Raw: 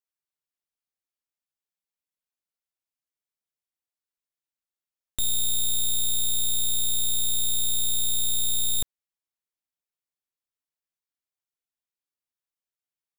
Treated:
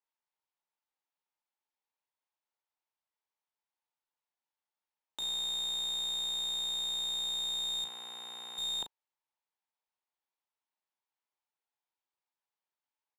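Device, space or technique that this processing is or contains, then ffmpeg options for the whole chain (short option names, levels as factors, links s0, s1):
intercom: -filter_complex "[0:a]asettb=1/sr,asplit=3[s0][s1][s2];[s0]atrim=end=7.844[s3];[s1]atrim=start=7.84:end=8.58,asetpts=PTS-STARTPTS,afade=t=in:d=0.004:c=qsin,afade=t=out:st=0.736:d=0.004:c=qsin,equalizer=f=125:t=o:w=1:g=-10,equalizer=f=500:t=o:w=1:g=-4,equalizer=f=4000:t=o:w=1:g=-11,equalizer=f=8000:t=o:w=1:g=-11,equalizer=f=16000:t=o:w=1:g=-4[s4];[s2]atrim=start=8.576[s5];[s3][s4]acrossfade=d=0.004:c1=hsin:c2=qsin[s6];[s6][s5]acrossfade=d=0.004:c1=qsin:c2=hsin,highpass=350,lowpass=3900,equalizer=f=890:t=o:w=0.44:g=11,asoftclip=type=tanh:threshold=0.0266,asplit=2[s7][s8];[s8]adelay=37,volume=0.376[s9];[s7][s9]amix=inputs=2:normalize=0"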